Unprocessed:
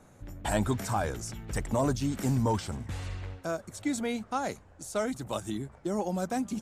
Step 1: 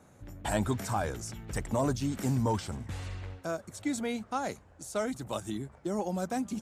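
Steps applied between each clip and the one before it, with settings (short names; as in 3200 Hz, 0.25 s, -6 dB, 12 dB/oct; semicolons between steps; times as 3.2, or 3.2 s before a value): HPF 40 Hz; gain -1.5 dB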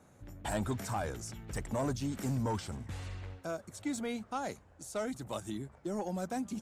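soft clip -22 dBFS, distortion -19 dB; gain -3 dB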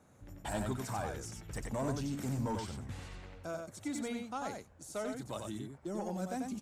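echo 92 ms -4.5 dB; gain -3 dB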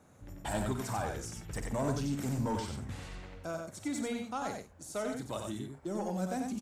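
doubler 49 ms -11.5 dB; gain +2.5 dB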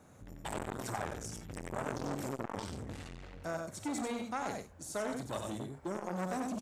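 core saturation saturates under 1200 Hz; gain +2 dB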